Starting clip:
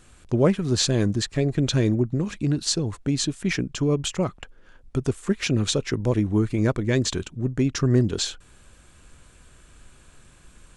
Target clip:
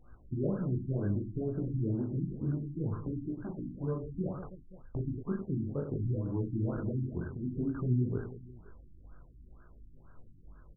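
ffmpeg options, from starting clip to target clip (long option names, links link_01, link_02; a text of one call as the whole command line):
ffmpeg -i in.wav -filter_complex "[0:a]equalizer=frequency=430:width=0.41:gain=-4,acompressor=threshold=-26dB:ratio=6,flanger=delay=16.5:depth=6:speed=0.63,asettb=1/sr,asplit=3[link_01][link_02][link_03];[link_01]atrim=end=3.334[link_04];[link_02]atrim=start=3.33:end=3.84,asetpts=PTS-STARTPTS,afade=type=in:duration=0.004:curve=qsin,afade=type=out:start_time=0.506:duration=0.004:curve=qsin,asoftclip=type=hard:threshold=-35.5dB[link_05];[link_03]atrim=start=3.836[link_06];[link_04][link_05]acrossfade=duration=0.004:curve1=hsin:curve2=qsin[link_07];[link_07][link_06]acrossfade=duration=0.004:curve1=qsin:curve2=hsin,aecho=1:1:40|100|190|325|527.5:0.631|0.398|0.251|0.158|0.1,afftfilt=real='re*lt(b*sr/1024,340*pow(1700/340,0.5+0.5*sin(2*PI*2.1*pts/sr)))':imag='im*lt(b*sr/1024,340*pow(1700/340,0.5+0.5*sin(2*PI*2.1*pts/sr)))':win_size=1024:overlap=0.75,volume=-1dB" out.wav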